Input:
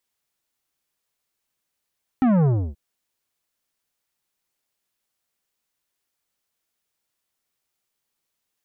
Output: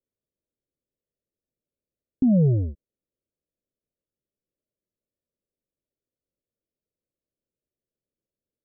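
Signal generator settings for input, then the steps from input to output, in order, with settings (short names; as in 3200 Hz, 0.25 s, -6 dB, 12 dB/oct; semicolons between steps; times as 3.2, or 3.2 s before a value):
sub drop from 270 Hz, over 0.53 s, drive 12 dB, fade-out 0.30 s, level -16 dB
steep low-pass 610 Hz 72 dB/oct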